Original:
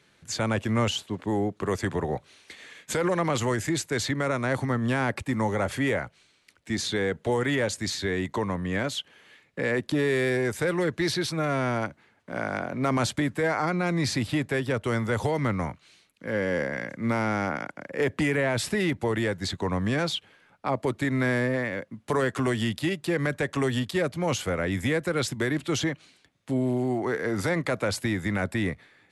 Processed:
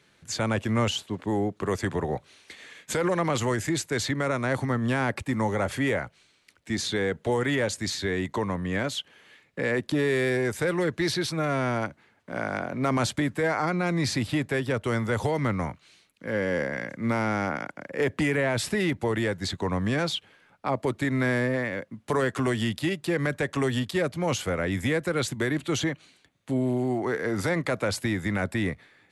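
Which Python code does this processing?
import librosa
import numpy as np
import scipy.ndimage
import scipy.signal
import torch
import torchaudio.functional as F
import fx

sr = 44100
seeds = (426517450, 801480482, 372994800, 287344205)

y = fx.notch(x, sr, hz=5200.0, q=11.0, at=(25.17, 26.86))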